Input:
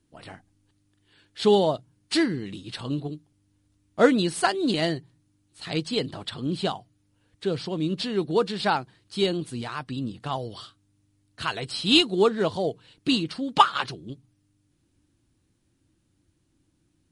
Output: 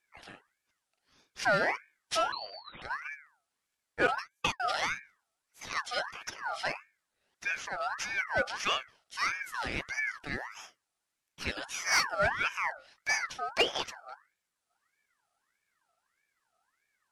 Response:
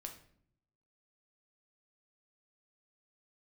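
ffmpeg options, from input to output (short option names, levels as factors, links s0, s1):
-filter_complex "[0:a]highpass=f=200:w=0.5412,highpass=f=200:w=1.3066,bandreject=f=50:t=h:w=6,bandreject=f=100:t=h:w=6,bandreject=f=150:t=h:w=6,bandreject=f=200:t=h:w=6,bandreject=f=250:t=h:w=6,bandreject=f=300:t=h:w=6,bandreject=f=350:t=h:w=6,bandreject=f=400:t=h:w=6,bandreject=f=450:t=h:w=6,asettb=1/sr,asplit=3[s0][s1][s2];[s0]atrim=end=4.074[s3];[s1]atrim=start=4.07:end=4.6,asetpts=PTS-STARTPTS,afade=t=in:d=0.004:c=qsin,afade=t=out:st=0.526:d=0.004:c=qsin,agate=range=0.00708:threshold=0.0794:ratio=16:detection=peak[s4];[s2]atrim=start=4.596[s5];[s3][s4]acrossfade=d=0.004:c1=hsin:c2=qsin[s6];[s6][s5]acrossfade=d=0.004:c1=qsin:c2=hsin,asettb=1/sr,asplit=3[s7][s8][s9];[s7]atrim=end=9.544[s10];[s8]atrim=start=9.54:end=10.19,asetpts=PTS-STARTPTS,afade=t=in:d=0.004:c=qsin,afade=t=out:st=0.646:d=0.004:c=qsin,acontrast=29[s11];[s9]atrim=start=10.186[s12];[s10][s11]acrossfade=d=0.004:c1=hsin:c2=qsin[s13];[s13][s12]acrossfade=d=0.004:c1=qsin:c2=hsin,asoftclip=type=tanh:threshold=0.2,asettb=1/sr,asplit=3[s14][s15][s16];[s14]atrim=end=2.324[s17];[s15]atrim=start=2.32:end=2.82,asetpts=PTS-STARTPTS,afade=t=in:d=0.004:c=qsin,afade=t=out:st=0.496:d=0.004:c=qsin,lowpass=f=2500:t=q:w=0.5098,lowpass=f=2500:t=q:w=0.6013,lowpass=f=2500:t=q:w=0.9,lowpass=f=2500:t=q:w=2.563,afreqshift=-2900[s18];[s16]atrim=start=2.816[s19];[s17][s18]acrossfade=d=0.004:c1=hsin:c2=qsin[s20];[s20][s19]acrossfade=d=0.004:c1=qsin:c2=hsin,aeval=exprs='val(0)*sin(2*PI*1500*n/s+1500*0.35/1.6*sin(2*PI*1.6*n/s))':c=same,volume=0.75"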